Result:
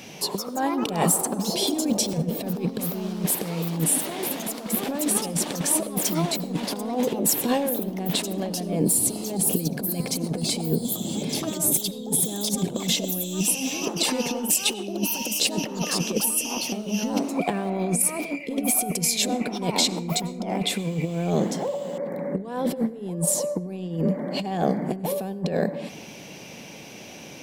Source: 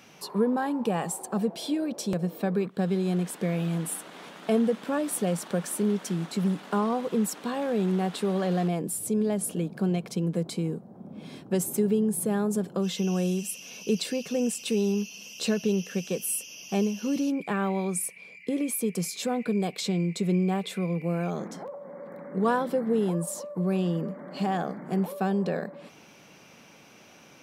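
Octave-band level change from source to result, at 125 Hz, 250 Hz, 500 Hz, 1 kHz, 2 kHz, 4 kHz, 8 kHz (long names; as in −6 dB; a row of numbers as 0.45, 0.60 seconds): +1.0, +0.5, +0.5, +2.5, +4.0, +11.0, +11.0 decibels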